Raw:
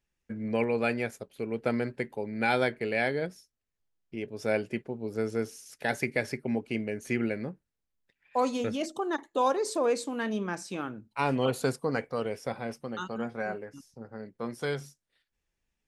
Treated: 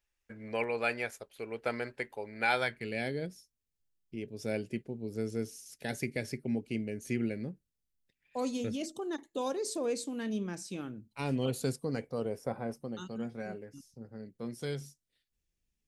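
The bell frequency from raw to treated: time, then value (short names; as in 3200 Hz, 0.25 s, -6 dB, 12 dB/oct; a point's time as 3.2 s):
bell -13.5 dB 2.3 oct
2.54 s 180 Hz
2.96 s 1100 Hz
11.93 s 1100 Hz
12.59 s 4100 Hz
13.04 s 1100 Hz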